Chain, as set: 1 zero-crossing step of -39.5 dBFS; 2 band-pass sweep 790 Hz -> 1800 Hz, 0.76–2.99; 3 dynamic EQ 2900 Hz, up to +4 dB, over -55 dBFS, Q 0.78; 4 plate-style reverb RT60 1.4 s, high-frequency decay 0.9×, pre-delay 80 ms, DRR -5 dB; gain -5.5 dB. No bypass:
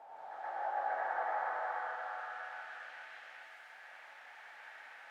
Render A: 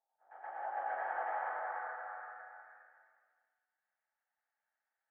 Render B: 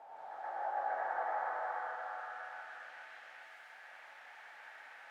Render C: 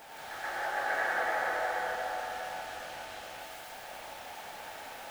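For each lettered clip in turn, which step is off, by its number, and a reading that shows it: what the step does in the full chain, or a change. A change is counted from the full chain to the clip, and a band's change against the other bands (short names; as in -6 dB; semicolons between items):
1, distortion -8 dB; 3, 4 kHz band -1.5 dB; 2, 4 kHz band +7.5 dB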